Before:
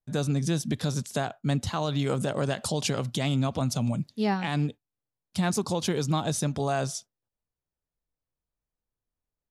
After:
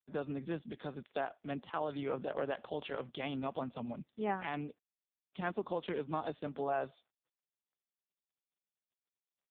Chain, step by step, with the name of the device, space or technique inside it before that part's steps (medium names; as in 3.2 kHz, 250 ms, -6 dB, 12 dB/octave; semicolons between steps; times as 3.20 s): telephone (band-pass 310–3200 Hz; trim -5.5 dB; AMR-NB 4.75 kbps 8 kHz)